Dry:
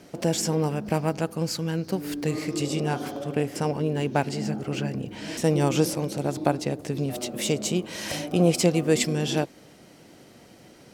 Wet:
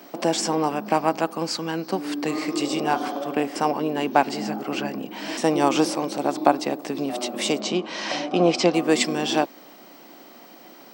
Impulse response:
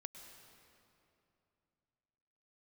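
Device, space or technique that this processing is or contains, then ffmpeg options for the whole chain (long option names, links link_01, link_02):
old television with a line whistle: -filter_complex "[0:a]highpass=frequency=230:width=0.5412,highpass=frequency=230:width=1.3066,equalizer=frequency=460:width_type=q:width=4:gain=-5,equalizer=frequency=780:width_type=q:width=4:gain=5,equalizer=frequency=1100:width_type=q:width=4:gain=7,equalizer=frequency=6800:width_type=q:width=4:gain=-5,lowpass=frequency=8400:width=0.5412,lowpass=frequency=8400:width=1.3066,aeval=exprs='val(0)+0.002*sin(2*PI*15734*n/s)':channel_layout=same,asettb=1/sr,asplit=3[link_01][link_02][link_03];[link_01]atrim=end=7.604[link_04];[link_02]atrim=start=7.6:end=8.74,asetpts=PTS-STARTPTS,afade=type=in:duration=0.004:curve=qsin,afade=type=out:start_time=1.136:duration=0.004:curve=qsin,lowpass=frequency=6100:width=0.5412,lowpass=frequency=6100:width=1.3066[link_05];[link_03]atrim=start=8.736[link_06];[link_04][link_05]acrossfade=duration=0.004:curve1=hsin:curve2=qsin[link_07];[link_07][link_06]acrossfade=duration=0.004:curve1=qsin:curve2=hsin,volume=4.5dB"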